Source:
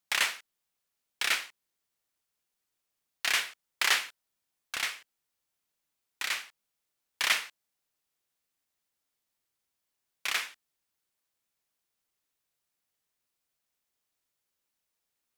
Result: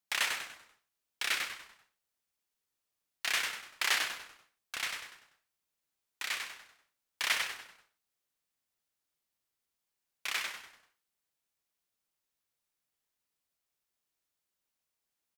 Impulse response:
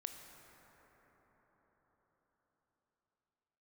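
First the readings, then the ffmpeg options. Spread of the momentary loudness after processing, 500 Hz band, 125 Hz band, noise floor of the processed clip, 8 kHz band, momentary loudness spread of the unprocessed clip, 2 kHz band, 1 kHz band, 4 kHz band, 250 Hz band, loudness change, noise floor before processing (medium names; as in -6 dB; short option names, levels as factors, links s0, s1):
16 LU, -2.5 dB, no reading, under -85 dBFS, -3.0 dB, 17 LU, -3.0 dB, -3.0 dB, -3.5 dB, -1.5 dB, -4.0 dB, -84 dBFS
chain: -filter_complex "[0:a]asplit=6[s0][s1][s2][s3][s4][s5];[s1]adelay=97,afreqshift=-110,volume=0.562[s6];[s2]adelay=194,afreqshift=-220,volume=0.224[s7];[s3]adelay=291,afreqshift=-330,volume=0.0902[s8];[s4]adelay=388,afreqshift=-440,volume=0.0359[s9];[s5]adelay=485,afreqshift=-550,volume=0.0145[s10];[s0][s6][s7][s8][s9][s10]amix=inputs=6:normalize=0,volume=0.596"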